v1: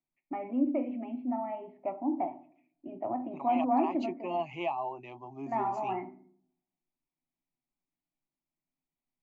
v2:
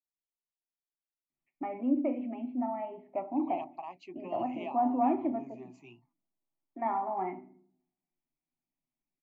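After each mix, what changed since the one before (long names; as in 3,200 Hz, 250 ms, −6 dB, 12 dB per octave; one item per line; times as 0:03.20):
first voice: entry +1.30 s
second voice −8.0 dB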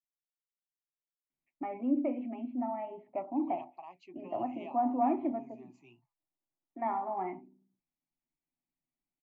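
second voice −6.0 dB
reverb: off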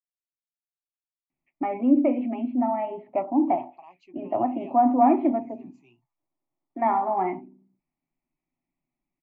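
first voice +10.5 dB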